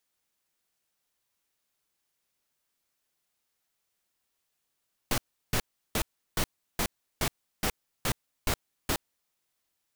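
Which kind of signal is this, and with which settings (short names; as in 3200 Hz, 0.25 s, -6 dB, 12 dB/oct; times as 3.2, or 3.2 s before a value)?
noise bursts pink, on 0.07 s, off 0.35 s, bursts 10, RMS -27 dBFS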